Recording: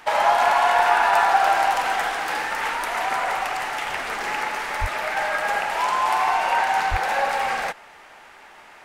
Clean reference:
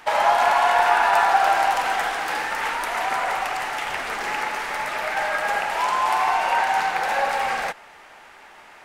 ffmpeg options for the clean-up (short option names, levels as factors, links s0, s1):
-filter_complex "[0:a]asplit=3[s0][s1][s2];[s0]afade=t=out:st=4.8:d=0.02[s3];[s1]highpass=f=140:w=0.5412,highpass=f=140:w=1.3066,afade=t=in:st=4.8:d=0.02,afade=t=out:st=4.92:d=0.02[s4];[s2]afade=t=in:st=4.92:d=0.02[s5];[s3][s4][s5]amix=inputs=3:normalize=0,asplit=3[s6][s7][s8];[s6]afade=t=out:st=6.9:d=0.02[s9];[s7]highpass=f=140:w=0.5412,highpass=f=140:w=1.3066,afade=t=in:st=6.9:d=0.02,afade=t=out:st=7.02:d=0.02[s10];[s8]afade=t=in:st=7.02:d=0.02[s11];[s9][s10][s11]amix=inputs=3:normalize=0"